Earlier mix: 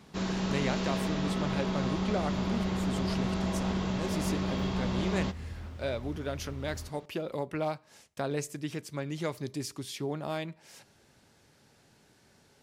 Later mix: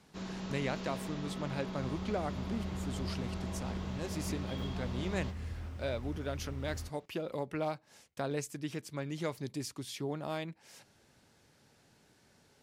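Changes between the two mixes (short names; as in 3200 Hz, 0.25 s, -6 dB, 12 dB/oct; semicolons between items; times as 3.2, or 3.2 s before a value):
first sound -8.0 dB; reverb: off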